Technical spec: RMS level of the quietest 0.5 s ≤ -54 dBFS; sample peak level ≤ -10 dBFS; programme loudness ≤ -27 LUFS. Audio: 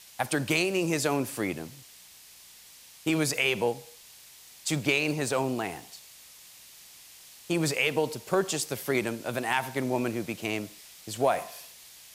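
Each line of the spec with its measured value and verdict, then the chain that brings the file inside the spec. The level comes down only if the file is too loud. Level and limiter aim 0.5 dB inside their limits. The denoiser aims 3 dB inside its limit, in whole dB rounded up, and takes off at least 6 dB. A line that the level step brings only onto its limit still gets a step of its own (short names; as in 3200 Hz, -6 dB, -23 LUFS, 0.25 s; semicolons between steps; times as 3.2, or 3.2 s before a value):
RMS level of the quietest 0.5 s -52 dBFS: fail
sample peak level -11.5 dBFS: OK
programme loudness -28.5 LUFS: OK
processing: denoiser 6 dB, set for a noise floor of -52 dBFS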